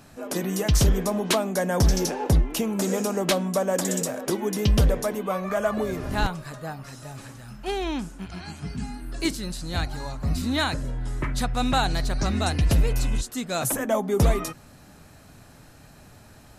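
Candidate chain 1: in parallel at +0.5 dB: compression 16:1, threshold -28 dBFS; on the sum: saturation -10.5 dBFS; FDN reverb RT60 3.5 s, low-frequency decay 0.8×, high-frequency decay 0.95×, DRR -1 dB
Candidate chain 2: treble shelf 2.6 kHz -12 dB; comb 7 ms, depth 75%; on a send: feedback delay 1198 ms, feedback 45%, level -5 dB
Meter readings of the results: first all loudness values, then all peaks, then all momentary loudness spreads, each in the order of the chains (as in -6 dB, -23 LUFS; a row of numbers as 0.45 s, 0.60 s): -20.5 LUFS, -25.0 LUFS; -4.5 dBFS, -7.5 dBFS; 11 LU, 10 LU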